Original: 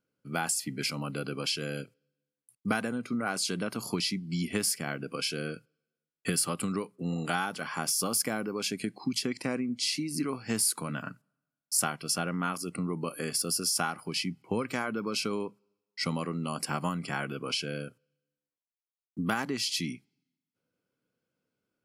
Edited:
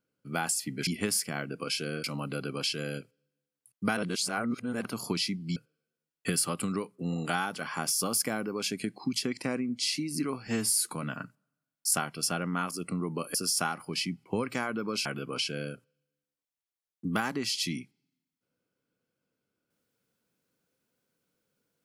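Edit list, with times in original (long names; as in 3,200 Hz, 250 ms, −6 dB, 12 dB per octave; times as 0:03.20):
0:02.80–0:03.68: reverse
0:04.39–0:05.56: move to 0:00.87
0:10.47–0:10.74: time-stretch 1.5×
0:13.21–0:13.53: remove
0:15.24–0:17.19: remove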